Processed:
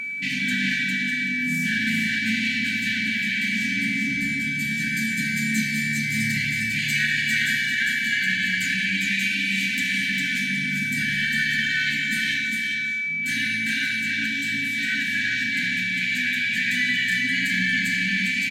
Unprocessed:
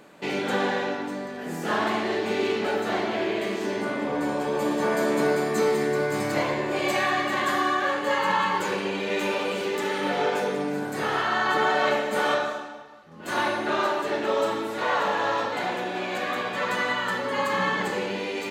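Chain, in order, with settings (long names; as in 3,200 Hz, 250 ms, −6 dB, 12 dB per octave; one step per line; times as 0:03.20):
mains-hum notches 50/100/150/200 Hz
steady tone 2,300 Hz −34 dBFS
in parallel at +0.5 dB: brickwall limiter −19 dBFS, peak gain reduction 8.5 dB
on the sum: upward compression, threshold −42 dBFS
brick-wall band-stop 280–1,500 Hz
on a send: single-tap delay 403 ms −3.5 dB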